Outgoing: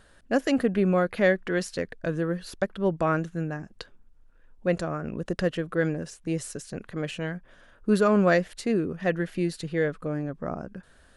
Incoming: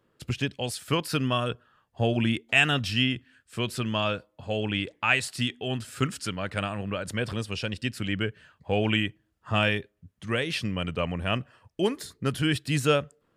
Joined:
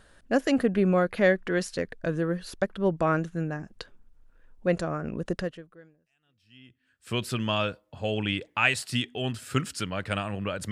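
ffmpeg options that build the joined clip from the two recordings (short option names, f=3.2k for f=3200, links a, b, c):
-filter_complex "[0:a]apad=whole_dur=10.71,atrim=end=10.71,atrim=end=7.07,asetpts=PTS-STARTPTS[a];[1:a]atrim=start=1.81:end=7.17,asetpts=PTS-STARTPTS[b];[a][b]acrossfade=d=1.72:c1=exp:c2=exp"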